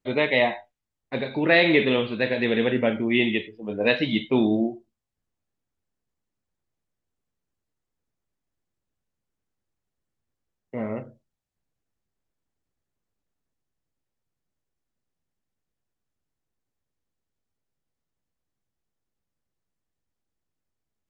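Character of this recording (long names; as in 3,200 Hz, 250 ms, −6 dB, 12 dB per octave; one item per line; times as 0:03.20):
background noise floor −84 dBFS
spectral slope −3.5 dB per octave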